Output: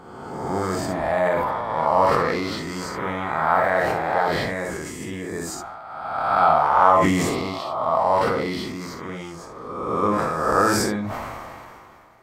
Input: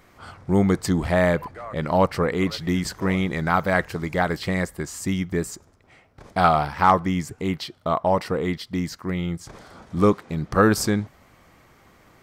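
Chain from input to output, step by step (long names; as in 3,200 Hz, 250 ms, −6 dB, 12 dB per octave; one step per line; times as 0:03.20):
peak hold with a rise ahead of every peak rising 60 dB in 1.51 s
parametric band 910 Hz +12.5 dB 1.7 octaves
convolution reverb, pre-delay 3 ms, DRR 3.5 dB
level that may fall only so fast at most 24 dB per second
level −13 dB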